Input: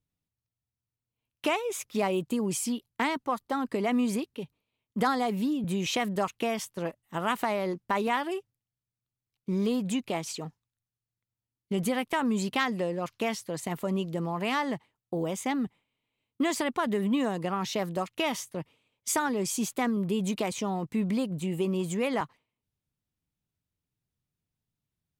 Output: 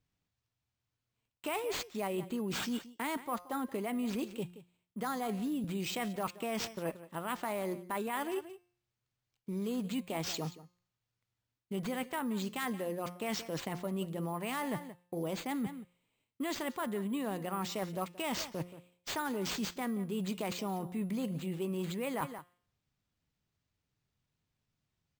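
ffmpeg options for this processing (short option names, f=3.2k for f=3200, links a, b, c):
-af "aecho=1:1:177:0.112,areverse,acompressor=threshold=-36dB:ratio=6,areverse,bandreject=f=177:t=h:w=4,bandreject=f=354:t=h:w=4,bandreject=f=531:t=h:w=4,bandreject=f=708:t=h:w=4,bandreject=f=885:t=h:w=4,bandreject=f=1.062k:t=h:w=4,bandreject=f=1.239k:t=h:w=4,bandreject=f=1.416k:t=h:w=4,bandreject=f=1.593k:t=h:w=4,bandreject=f=1.77k:t=h:w=4,bandreject=f=1.947k:t=h:w=4,bandreject=f=2.124k:t=h:w=4,bandreject=f=2.301k:t=h:w=4,bandreject=f=2.478k:t=h:w=4,bandreject=f=2.655k:t=h:w=4,bandreject=f=2.832k:t=h:w=4,bandreject=f=3.009k:t=h:w=4,bandreject=f=3.186k:t=h:w=4,bandreject=f=3.363k:t=h:w=4,bandreject=f=3.54k:t=h:w=4,bandreject=f=3.717k:t=h:w=4,bandreject=f=3.894k:t=h:w=4,bandreject=f=4.071k:t=h:w=4,bandreject=f=4.248k:t=h:w=4,bandreject=f=4.425k:t=h:w=4,bandreject=f=4.602k:t=h:w=4,bandreject=f=4.779k:t=h:w=4,bandreject=f=4.956k:t=h:w=4,bandreject=f=5.133k:t=h:w=4,bandreject=f=5.31k:t=h:w=4,bandreject=f=5.487k:t=h:w=4,bandreject=f=5.664k:t=h:w=4,bandreject=f=5.841k:t=h:w=4,acrusher=samples=4:mix=1:aa=0.000001,volume=2.5dB"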